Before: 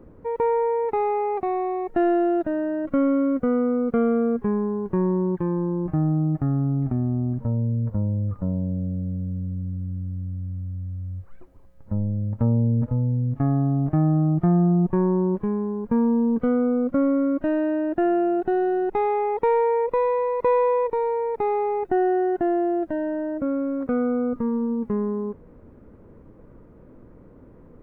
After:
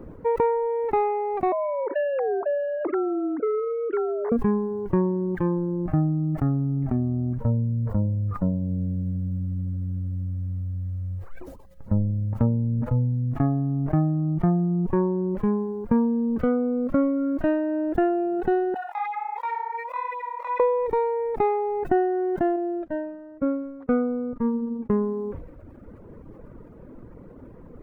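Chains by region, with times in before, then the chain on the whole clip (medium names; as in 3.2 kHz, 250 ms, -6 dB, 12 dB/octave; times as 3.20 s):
1.52–4.32 s: formants replaced by sine waves + delay 114 ms -22 dB + compression 5:1, threshold -27 dBFS
18.74–20.60 s: steep high-pass 660 Hz 48 dB/octave + compression 2.5:1, threshold -30 dBFS + chorus 1.4 Hz, delay 18.5 ms, depth 7.8 ms
22.56–24.90 s: distance through air 57 m + upward expansion 2.5:1, over -44 dBFS
whole clip: compression 3:1, threshold -24 dBFS; reverb removal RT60 1.1 s; decay stretcher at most 66 dB/s; trim +6 dB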